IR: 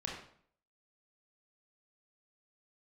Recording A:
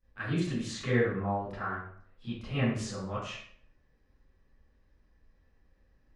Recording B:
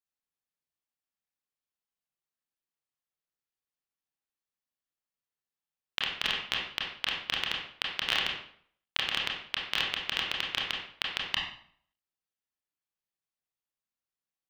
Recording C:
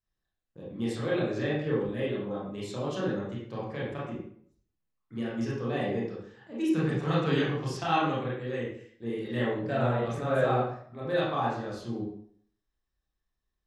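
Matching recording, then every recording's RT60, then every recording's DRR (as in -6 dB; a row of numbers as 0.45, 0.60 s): B; 0.60, 0.60, 0.60 s; -16.0, -2.5, -7.5 dB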